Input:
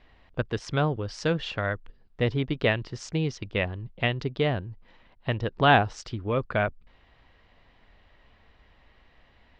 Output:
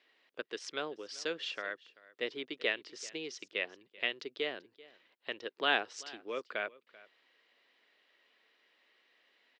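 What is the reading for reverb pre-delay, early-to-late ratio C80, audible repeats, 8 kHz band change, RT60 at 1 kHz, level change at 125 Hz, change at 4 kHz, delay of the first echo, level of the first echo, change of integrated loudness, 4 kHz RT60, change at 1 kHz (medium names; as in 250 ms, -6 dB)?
no reverb, no reverb, 1, -2.5 dB, no reverb, -37.5 dB, -3.5 dB, 387 ms, -21.0 dB, -10.0 dB, no reverb, -13.5 dB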